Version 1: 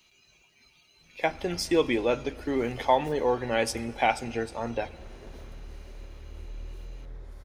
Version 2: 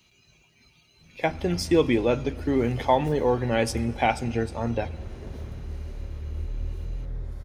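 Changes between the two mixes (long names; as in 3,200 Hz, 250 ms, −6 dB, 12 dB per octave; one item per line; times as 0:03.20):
background: send +8.0 dB
master: add parametric band 110 Hz +11 dB 2.6 octaves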